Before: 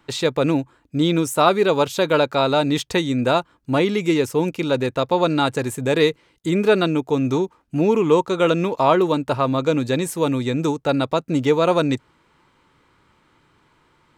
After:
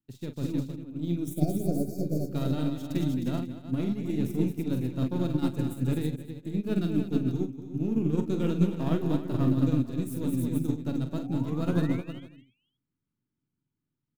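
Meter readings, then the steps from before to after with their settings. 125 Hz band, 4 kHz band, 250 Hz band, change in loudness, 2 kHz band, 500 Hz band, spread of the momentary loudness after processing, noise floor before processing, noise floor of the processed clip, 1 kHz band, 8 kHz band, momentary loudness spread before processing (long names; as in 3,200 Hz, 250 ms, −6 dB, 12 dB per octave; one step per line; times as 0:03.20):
−2.5 dB, −20.0 dB, −6.0 dB, −9.5 dB, −20.5 dB, −17.0 dB, 7 LU, −61 dBFS, −85 dBFS, −22.0 dB, below −10 dB, 5 LU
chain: gain on one half-wave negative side −7 dB
graphic EQ with 10 bands 125 Hz +11 dB, 250 Hz +11 dB, 500 Hz −7 dB, 1,000 Hz −10 dB, 2,000 Hz −6 dB, 4,000 Hz −6 dB, 8,000 Hz −8 dB
healed spectral selection 0:01.32–0:02.23, 760–4,300 Hz after
high-shelf EQ 6,600 Hz +11 dB
brickwall limiter −13.5 dBFS, peak gain reduction 9.5 dB
sound drawn into the spectrogram rise, 0:10.98–0:12.23, 470–3,400 Hz −40 dBFS
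multi-tap delay 46/220/311/467/545 ms −6/−7/−6/−9/−13 dB
expander for the loud parts 2.5 to 1, over −31 dBFS
level −4 dB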